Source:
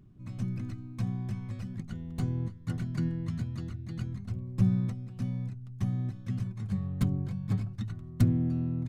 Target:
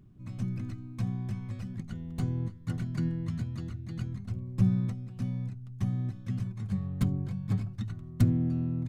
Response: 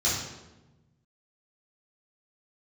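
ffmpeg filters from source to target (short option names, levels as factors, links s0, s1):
-filter_complex "[0:a]asplit=2[s0][s1];[1:a]atrim=start_sample=2205,atrim=end_sample=3969[s2];[s1][s2]afir=irnorm=-1:irlink=0,volume=0.02[s3];[s0][s3]amix=inputs=2:normalize=0"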